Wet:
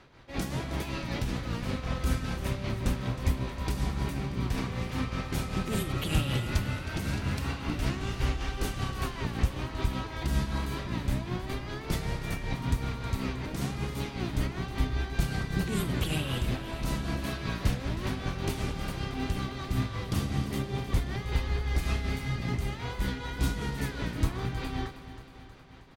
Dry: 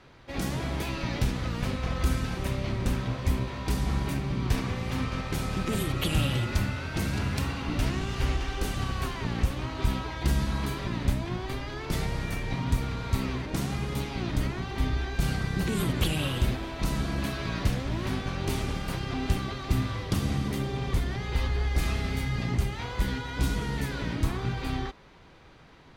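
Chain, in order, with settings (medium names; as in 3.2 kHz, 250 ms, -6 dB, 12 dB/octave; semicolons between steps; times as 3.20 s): tremolo 5.2 Hz, depth 54%; feedback delay 316 ms, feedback 59%, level -13.5 dB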